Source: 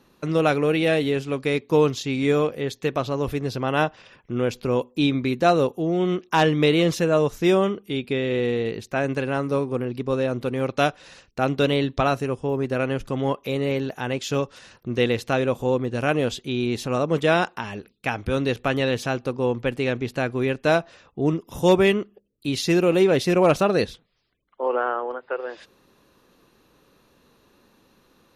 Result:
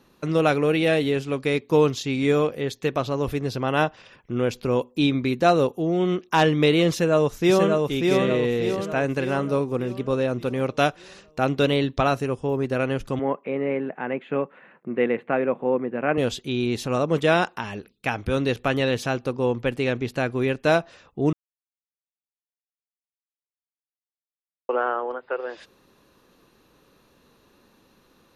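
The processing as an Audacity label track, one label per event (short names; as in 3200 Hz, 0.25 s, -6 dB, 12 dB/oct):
6.900000	7.860000	echo throw 0.59 s, feedback 50%, level -3 dB
13.190000	16.180000	elliptic band-pass 170–2200 Hz
21.330000	24.690000	mute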